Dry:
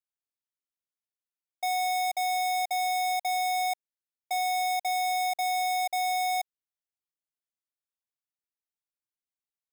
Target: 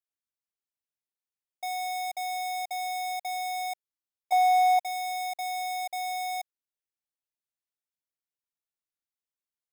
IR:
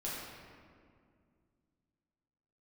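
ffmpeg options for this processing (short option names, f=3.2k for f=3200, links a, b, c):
-filter_complex "[0:a]asettb=1/sr,asplit=3[a][b][c];[a]atrim=end=4.324[d];[b]atrim=start=4.32:end=4.79,asetpts=PTS-STARTPTS,afade=t=in:d=0.004:c=qsin,afade=t=out:st=0.466:d=0.004:c=qsin,equalizer=f=960:w=0.8:g=15[e];[c]atrim=start=4.786[f];[d][e]acrossfade=d=0.004:c1=hsin:c2=qsin[g];[g][f]acrossfade=d=0.004:c1=qsin:c2=hsin,volume=-4.5dB"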